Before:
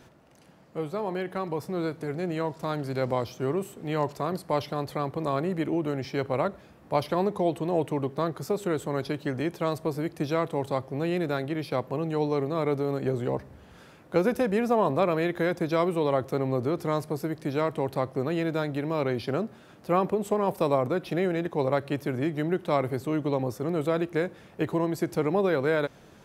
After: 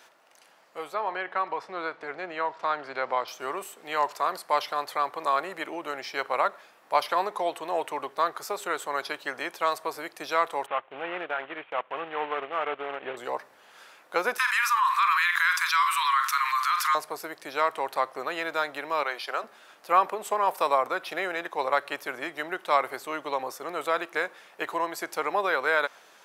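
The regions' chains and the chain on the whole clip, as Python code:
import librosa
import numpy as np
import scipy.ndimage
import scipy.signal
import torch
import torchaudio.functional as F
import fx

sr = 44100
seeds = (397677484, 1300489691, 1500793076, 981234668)

y = fx.chain(x, sr, fx.lowpass(hz=3100.0, slope=12),
    fx.band_squash(depth_pct=40), at=(0.94, 3.28))
y = fx.chain(y, sr, fx.cvsd(bps=16000),
    fx.transient(attack_db=-1, sustain_db=-10), at=(10.66, 13.17))
y = fx.chain(y, sr, fx.steep_highpass(hz=1000.0, slope=96),
    fx.doubler(ms=47.0, db=-12.5),
    fx.env_flatten(amount_pct=70), at=(14.38, 16.95))
y = fx.chain(y, sr, fx.highpass(hz=490.0, slope=12),
    fx.quant_float(bits=8), at=(19.03, 19.44))
y = scipy.signal.sosfilt(scipy.signal.butter(2, 860.0, 'highpass', fs=sr, output='sos'), y)
y = fx.dynamic_eq(y, sr, hz=1200.0, q=1.0, threshold_db=-45.0, ratio=4.0, max_db=5)
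y = y * 10.0 ** (4.5 / 20.0)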